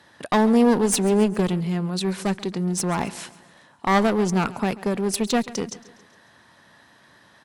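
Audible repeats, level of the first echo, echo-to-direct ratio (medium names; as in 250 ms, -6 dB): 3, -19.0 dB, -17.5 dB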